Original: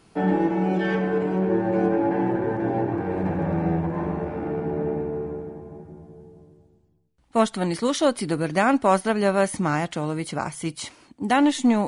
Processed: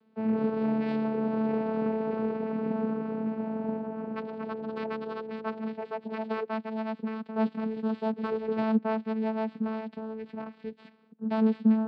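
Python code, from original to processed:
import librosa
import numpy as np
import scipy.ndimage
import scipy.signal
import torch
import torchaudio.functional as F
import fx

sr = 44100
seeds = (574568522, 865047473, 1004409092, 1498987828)

y = fx.tracing_dist(x, sr, depth_ms=0.39)
y = fx.echo_pitch(y, sr, ms=238, semitones=6, count=2, db_per_echo=-3.0)
y = scipy.signal.sosfilt(scipy.signal.cheby1(5, 1.0, [170.0, 3700.0], 'bandpass', fs=sr, output='sos'), y)
y = fx.vocoder(y, sr, bands=8, carrier='saw', carrier_hz=220.0)
y = y * librosa.db_to_amplitude(-6.5)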